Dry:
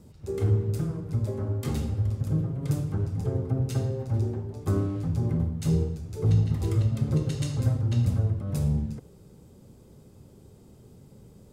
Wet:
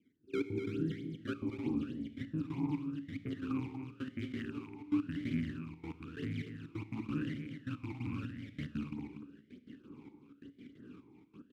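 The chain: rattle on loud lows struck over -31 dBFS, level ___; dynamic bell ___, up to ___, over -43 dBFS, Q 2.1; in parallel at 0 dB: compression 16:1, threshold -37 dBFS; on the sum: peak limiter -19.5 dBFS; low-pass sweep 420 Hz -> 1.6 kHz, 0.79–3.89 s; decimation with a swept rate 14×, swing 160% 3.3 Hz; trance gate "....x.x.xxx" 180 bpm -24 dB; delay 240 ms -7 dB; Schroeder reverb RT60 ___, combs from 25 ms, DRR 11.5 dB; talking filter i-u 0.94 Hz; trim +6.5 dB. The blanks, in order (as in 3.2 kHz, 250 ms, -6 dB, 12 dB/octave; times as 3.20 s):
-29 dBFS, 420 Hz, -5 dB, 1.2 s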